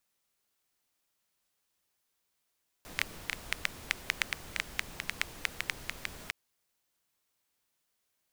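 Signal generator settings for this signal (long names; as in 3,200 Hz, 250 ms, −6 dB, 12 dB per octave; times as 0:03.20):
rain-like ticks over hiss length 3.46 s, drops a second 6.5, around 2,100 Hz, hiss −8 dB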